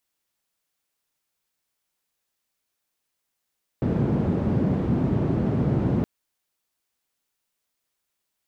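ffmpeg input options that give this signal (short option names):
-f lavfi -i "anoisesrc=c=white:d=2.22:r=44100:seed=1,highpass=f=120,lowpass=f=180,volume=6.5dB"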